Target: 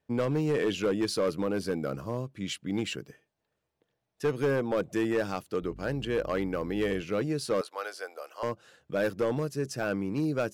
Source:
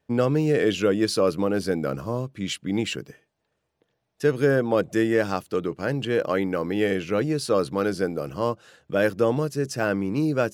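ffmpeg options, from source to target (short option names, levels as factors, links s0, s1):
-filter_complex "[0:a]asettb=1/sr,asplit=3[s0][s1][s2];[s0]atrim=end=7.614[s3];[s1]atrim=start=7.61:end=8.43,asetpts=PTS-STARTPTS,afade=t=in:d=0.004:c=qsin,afade=t=out:st=0.816:d=0.004:c=qsin,highpass=f=610:w=0.5412,highpass=f=610:w=1.3066[s4];[s2]atrim=start=8.426[s5];[s3][s4]acrossfade=d=0.004:c1=hsin:c2=qsin[s6];[s6][s5]acrossfade=d=0.004:c1=qsin:c2=hsin,volume=6.31,asoftclip=hard,volume=0.158,asettb=1/sr,asplit=3[s7][s8][s9];[s7]atrim=end=5.624[s10];[s8]atrim=start=5.62:end=7.02,asetpts=PTS-STARTPTS,afade=t=in:d=0.004:c=qsin,afade=t=out:st=1.396:d=0.004:c=qsin,aeval=exprs='val(0)+0.0112*(sin(2*PI*50*n/s)+sin(2*PI*2*50*n/s)/2+sin(2*PI*3*50*n/s)/3+sin(2*PI*4*50*n/s)/4+sin(2*PI*5*50*n/s)/5)':c=same[s11];[s9]atrim=start=7.016[s12];[s10][s11]acrossfade=d=0.004:c1=hsin:c2=qsin[s13];[s13][s12]acrossfade=d=0.004:c1=qsin:c2=hsin,volume=0.531"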